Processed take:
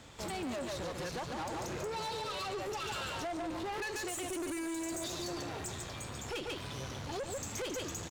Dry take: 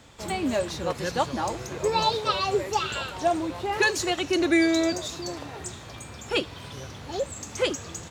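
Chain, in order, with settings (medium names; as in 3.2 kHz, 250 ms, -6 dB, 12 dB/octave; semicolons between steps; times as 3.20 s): delay 143 ms -6.5 dB; compression 3:1, threshold -28 dBFS, peak gain reduction 9.5 dB; 4.08–5.04 s: resonant high shelf 6.5 kHz +11.5 dB, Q 3; peak limiter -23.5 dBFS, peak gain reduction 7 dB; valve stage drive 35 dB, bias 0.45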